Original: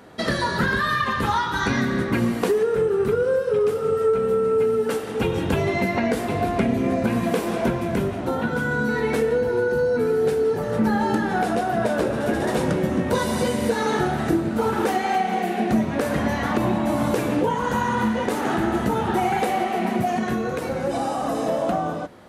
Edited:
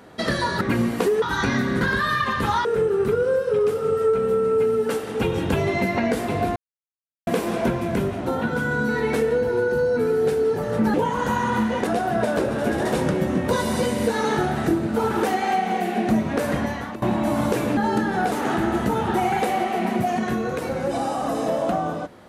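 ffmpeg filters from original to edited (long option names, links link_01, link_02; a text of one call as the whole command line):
ffmpeg -i in.wav -filter_complex "[0:a]asplit=12[link_01][link_02][link_03][link_04][link_05][link_06][link_07][link_08][link_09][link_10][link_11][link_12];[link_01]atrim=end=0.612[link_13];[link_02]atrim=start=2.038:end=2.652[link_14];[link_03]atrim=start=1.448:end=2.042[link_15];[link_04]atrim=start=0.608:end=1.452[link_16];[link_05]atrim=start=2.648:end=6.56,asetpts=PTS-STARTPTS,afade=type=out:start_time=3.908:duration=0.004:curve=hsin[link_17];[link_06]atrim=start=6.56:end=7.27,asetpts=PTS-STARTPTS,volume=0[link_18];[link_07]atrim=start=7.27:end=10.942,asetpts=PTS-STARTPTS,afade=type=in:duration=0.004:curve=hsin[link_19];[link_08]atrim=start=17.388:end=18.322[link_20];[link_09]atrim=start=11.488:end=16.64,asetpts=PTS-STARTPTS,afade=type=out:start_time=4.652:duration=0.5:silence=0.141254[link_21];[link_10]atrim=start=16.64:end=17.392,asetpts=PTS-STARTPTS,afade=type=in:duration=0.004:curve=hsin:silence=0.141254[link_22];[link_11]atrim=start=10.938:end=11.492[link_23];[link_12]atrim=start=18.318[link_24];[link_13][link_14]acrossfade=duration=0.004:curve1=hsin:curve2=hsin[link_25];[link_25][link_15]acrossfade=duration=0.004:curve1=hsin:curve2=hsin[link_26];[link_26][link_16]acrossfade=duration=0.004:curve1=hsin:curve2=hsin[link_27];[link_17][link_18][link_19]concat=n=3:v=0:a=1[link_28];[link_27][link_28]acrossfade=duration=0.004:curve1=hsin:curve2=hsin[link_29];[link_29][link_20]acrossfade=duration=0.004:curve1=hsin:curve2=hsin[link_30];[link_21][link_22]concat=n=2:v=0:a=1[link_31];[link_30][link_31]acrossfade=duration=0.004:curve1=hsin:curve2=hsin[link_32];[link_32][link_23]acrossfade=duration=0.004:curve1=hsin:curve2=hsin[link_33];[link_33][link_24]acrossfade=duration=0.004:curve1=hsin:curve2=hsin" out.wav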